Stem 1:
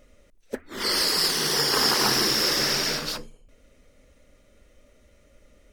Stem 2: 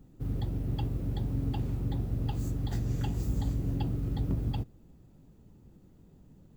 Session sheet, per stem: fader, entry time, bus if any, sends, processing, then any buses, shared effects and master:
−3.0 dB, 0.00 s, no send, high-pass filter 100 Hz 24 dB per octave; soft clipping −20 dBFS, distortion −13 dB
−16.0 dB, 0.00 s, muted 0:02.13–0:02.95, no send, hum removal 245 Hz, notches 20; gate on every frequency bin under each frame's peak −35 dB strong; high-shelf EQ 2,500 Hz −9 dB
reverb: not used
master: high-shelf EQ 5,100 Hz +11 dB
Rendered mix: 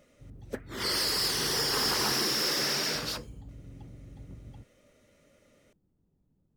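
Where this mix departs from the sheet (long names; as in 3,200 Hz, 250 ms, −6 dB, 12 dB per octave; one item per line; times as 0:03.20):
stem 2: missing gate on every frequency bin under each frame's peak −35 dB strong
master: missing high-shelf EQ 5,100 Hz +11 dB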